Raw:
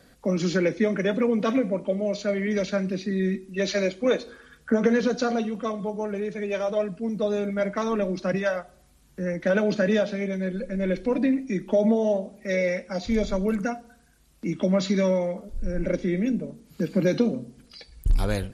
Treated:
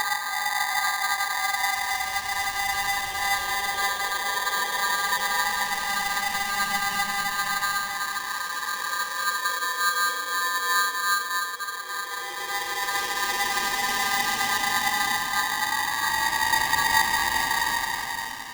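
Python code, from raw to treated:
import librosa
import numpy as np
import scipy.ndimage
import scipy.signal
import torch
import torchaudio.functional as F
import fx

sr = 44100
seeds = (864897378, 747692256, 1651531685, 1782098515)

y = fx.paulstretch(x, sr, seeds[0], factor=7.6, window_s=0.5, from_s=1.87)
y = fx.hum_notches(y, sr, base_hz=50, count=5)
y = y * np.sign(np.sin(2.0 * np.pi * 1400.0 * np.arange(len(y)) / sr))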